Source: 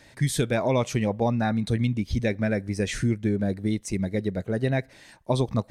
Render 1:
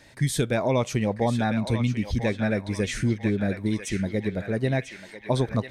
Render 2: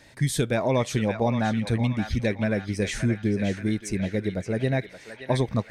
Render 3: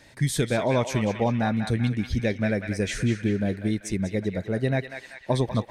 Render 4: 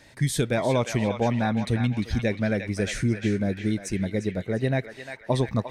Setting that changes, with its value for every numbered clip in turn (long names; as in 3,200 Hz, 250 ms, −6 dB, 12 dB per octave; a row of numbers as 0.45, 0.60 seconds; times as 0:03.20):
feedback echo with a band-pass in the loop, delay time: 994, 574, 193, 351 milliseconds